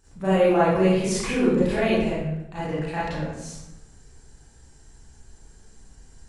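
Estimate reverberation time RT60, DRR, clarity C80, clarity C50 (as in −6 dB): 0.90 s, −11.0 dB, 2.0 dB, −2.0 dB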